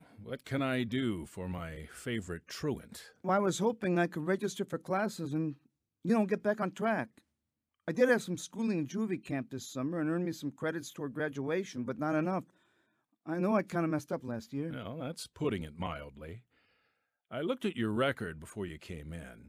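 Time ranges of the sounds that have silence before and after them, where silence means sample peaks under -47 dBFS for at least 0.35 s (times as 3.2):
6.05–7.18
7.88–12.42
13.26–16.38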